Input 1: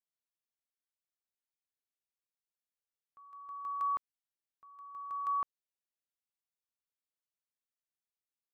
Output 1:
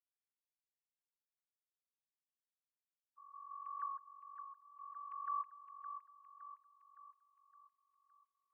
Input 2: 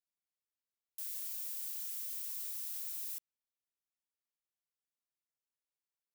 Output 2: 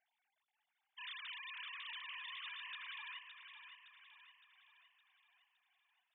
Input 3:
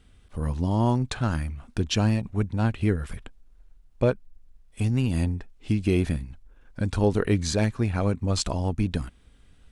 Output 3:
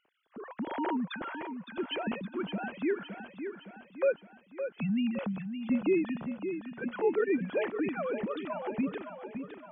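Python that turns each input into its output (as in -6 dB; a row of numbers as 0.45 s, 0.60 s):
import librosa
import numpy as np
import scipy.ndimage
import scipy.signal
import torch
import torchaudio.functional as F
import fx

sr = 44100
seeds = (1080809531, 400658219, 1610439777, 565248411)

y = fx.sine_speech(x, sr)
y = fx.echo_feedback(y, sr, ms=564, feedback_pct=51, wet_db=-8.5)
y = y * librosa.db_to_amplitude(-8.0)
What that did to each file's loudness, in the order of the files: -10.5 LU, -9.0 LU, -7.0 LU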